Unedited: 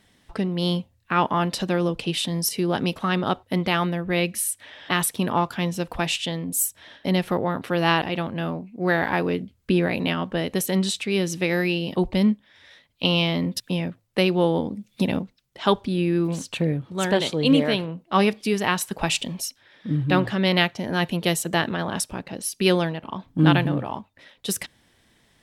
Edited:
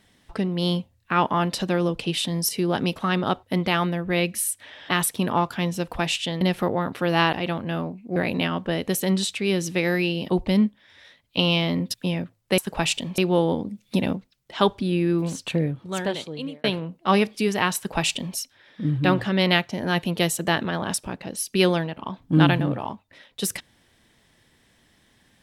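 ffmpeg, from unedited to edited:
-filter_complex "[0:a]asplit=6[a][b][c][d][e][f];[a]atrim=end=6.412[g];[b]atrim=start=7.098:end=8.852[h];[c]atrim=start=9.818:end=14.242[i];[d]atrim=start=18.818:end=19.422[j];[e]atrim=start=14.238:end=17.7,asetpts=PTS-STARTPTS,afade=t=out:st=2.422:d=1.04[k];[f]atrim=start=17.7,asetpts=PTS-STARTPTS,afade=t=in:d=0.004:c=hsin[l];[g][h]acrossfade=d=0.004:c1=hsin:c2=hsin[m];[m][i]acrossfade=d=0.004:c1=hsin:c2=hsin[n];[n][j]acrossfade=d=0.004:c1=hsin:c2=hsin[o];[k][l]concat=n=2:v=0:a=1[p];[o][p]acrossfade=d=0.004:c1=hsin:c2=hsin"

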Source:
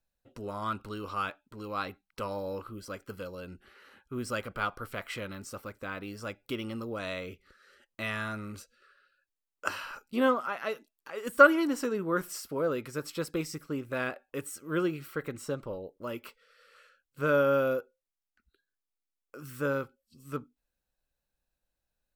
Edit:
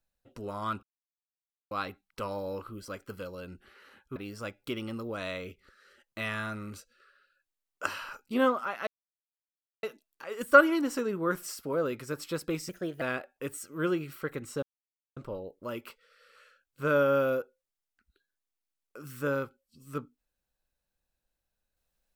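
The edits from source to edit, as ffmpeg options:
-filter_complex "[0:a]asplit=8[a][b][c][d][e][f][g][h];[a]atrim=end=0.83,asetpts=PTS-STARTPTS,afade=t=out:st=0.826:d=0.004:c=hsin[i];[b]atrim=start=0.83:end=1.71,asetpts=PTS-STARTPTS,volume=0[j];[c]atrim=start=1.71:end=4.162,asetpts=PTS-STARTPTS,afade=t=in:d=0.004:c=hsin[k];[d]atrim=start=5.978:end=10.69,asetpts=PTS-STARTPTS,afade=t=out:st=4.708:d=0.004:c=hsin,apad=pad_dur=0.96[l];[e]atrim=start=10.69:end=13.554,asetpts=PTS-STARTPTS,afade=t=in:d=0.004:c=hsin[m];[f]atrim=start=13.55:end=13.94,asetpts=PTS-STARTPTS,asetrate=52920,aresample=44100,atrim=end_sample=14332,asetpts=PTS-STARTPTS[n];[g]atrim=start=13.936:end=15.55,asetpts=PTS-STARTPTS,afade=t=out:st=1.61:d=0.004:c=hsin,apad=pad_dur=0.54[o];[h]atrim=start=15.55,asetpts=PTS-STARTPTS,afade=t=in:d=0.004:c=hsin[p];[i][j][k]concat=n=3:v=0:a=1[q];[l][m]concat=n=2:v=0:a=1[r];[q][r]acrossfade=d=0.004:c1=hsin:c2=hsin[s];[s][n]acrossfade=d=0.004:c1=hsin:c2=hsin[t];[o][p]concat=n=2:v=0:a=1[u];[t][u]acrossfade=d=0.004:c1=hsin:c2=hsin"

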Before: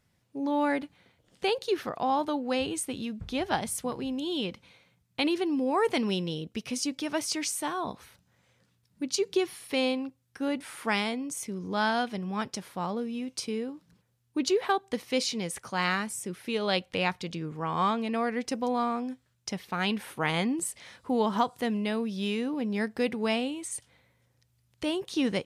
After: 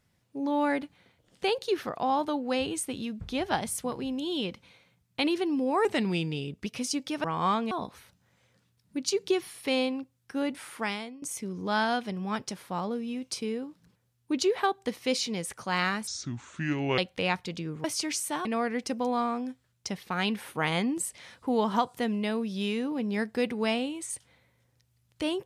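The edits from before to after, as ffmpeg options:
-filter_complex "[0:a]asplit=10[a][b][c][d][e][f][g][h][i][j];[a]atrim=end=5.854[k];[b]atrim=start=5.85:end=6.58,asetpts=PTS-STARTPTS,asetrate=39690,aresample=44100[l];[c]atrim=start=6.576:end=7.162[m];[d]atrim=start=17.598:end=18.072[n];[e]atrim=start=7.768:end=11.28,asetpts=PTS-STARTPTS,afade=t=out:st=2.882:d=0.63:silence=0.16788[o];[f]atrim=start=11.28:end=16.134,asetpts=PTS-STARTPTS,afade=t=in:d=0.004:c=hsin:silence=0.16788[p];[g]atrim=start=16.13:end=16.74,asetpts=PTS-STARTPTS,asetrate=29547,aresample=44100[q];[h]atrim=start=16.736:end=17.602[r];[i]atrim=start=7.158:end=7.772[s];[j]atrim=start=18.068[t];[k][l]acrossfade=d=0.004:c1=hsin:c2=hsin[u];[u][m]acrossfade=d=0.004:c1=hsin:c2=hsin[v];[v][n]acrossfade=d=0.004:c1=hsin:c2=hsin[w];[o][p]concat=n=2:v=0:a=1[x];[w][x]acrossfade=d=0.004:c1=hsin:c2=hsin[y];[y][q]acrossfade=d=0.004:c1=hsin:c2=hsin[z];[z][r]acrossfade=d=0.004:c1=hsin:c2=hsin[aa];[aa][s]acrossfade=d=0.004:c1=hsin:c2=hsin[ab];[ab][t]acrossfade=d=0.004:c1=hsin:c2=hsin"

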